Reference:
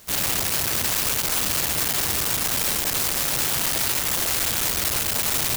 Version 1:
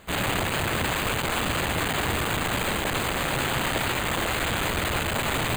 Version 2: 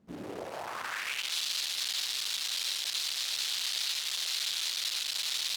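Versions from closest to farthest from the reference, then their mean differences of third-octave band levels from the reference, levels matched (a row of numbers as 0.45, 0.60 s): 1, 2; 7.5, 12.0 dB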